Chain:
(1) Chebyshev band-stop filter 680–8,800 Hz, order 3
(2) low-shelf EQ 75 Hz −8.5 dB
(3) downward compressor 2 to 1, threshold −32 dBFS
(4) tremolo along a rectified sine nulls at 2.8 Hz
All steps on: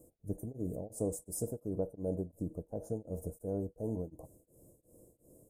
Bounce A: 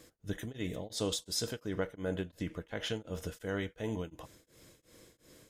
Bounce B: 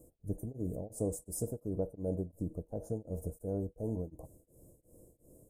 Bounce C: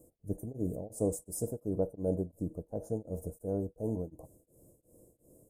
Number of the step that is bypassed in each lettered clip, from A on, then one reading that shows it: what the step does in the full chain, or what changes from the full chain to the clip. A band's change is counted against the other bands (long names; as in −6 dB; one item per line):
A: 1, 1 kHz band +6.5 dB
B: 2, 125 Hz band +2.5 dB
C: 3, change in integrated loudness +3.0 LU